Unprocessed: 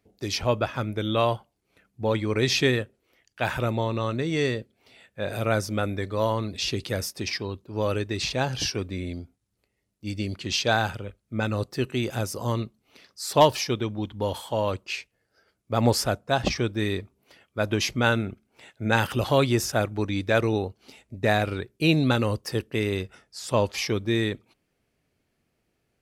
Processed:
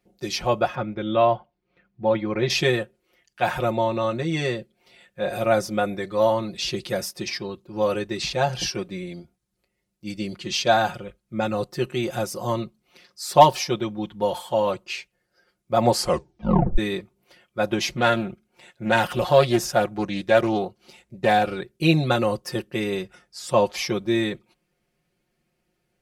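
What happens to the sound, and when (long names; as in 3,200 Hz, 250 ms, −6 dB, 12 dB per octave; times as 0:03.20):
0:00.75–0:02.50: high-frequency loss of the air 240 metres
0:15.95: tape stop 0.83 s
0:17.78–0:21.52: highs frequency-modulated by the lows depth 0.24 ms
whole clip: comb filter 5.6 ms, depth 92%; dynamic equaliser 710 Hz, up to +7 dB, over −36 dBFS, Q 1.7; level −2 dB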